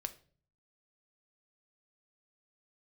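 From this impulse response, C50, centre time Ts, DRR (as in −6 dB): 16.0 dB, 5 ms, 8.5 dB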